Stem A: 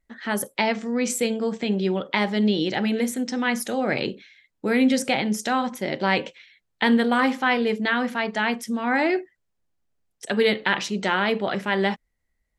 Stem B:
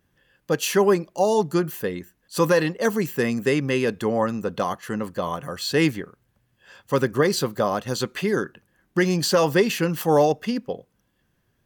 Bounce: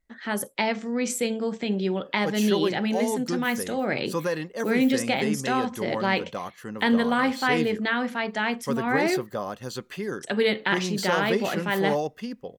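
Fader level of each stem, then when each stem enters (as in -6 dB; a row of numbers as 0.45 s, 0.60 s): -2.5 dB, -8.5 dB; 0.00 s, 1.75 s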